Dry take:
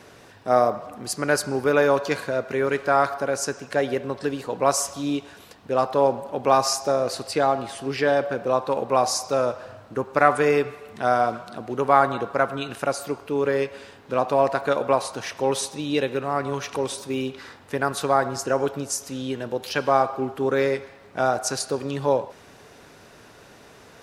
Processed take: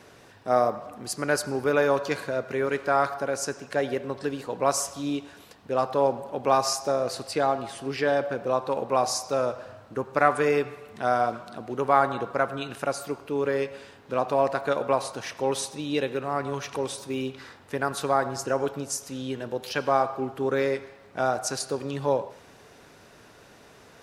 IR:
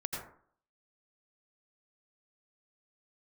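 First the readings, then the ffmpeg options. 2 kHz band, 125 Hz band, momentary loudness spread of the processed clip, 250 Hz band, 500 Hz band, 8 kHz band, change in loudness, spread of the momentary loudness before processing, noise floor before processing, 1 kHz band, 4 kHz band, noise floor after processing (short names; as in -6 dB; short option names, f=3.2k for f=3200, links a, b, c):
-3.5 dB, -3.0 dB, 10 LU, -3.5 dB, -3.5 dB, -3.5 dB, -3.5 dB, 10 LU, -49 dBFS, -3.5 dB, -3.5 dB, -52 dBFS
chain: -filter_complex "[0:a]asplit=2[a][b];[1:a]atrim=start_sample=2205[c];[b][c]afir=irnorm=-1:irlink=0,volume=-20.5dB[d];[a][d]amix=inputs=2:normalize=0,volume=-4dB"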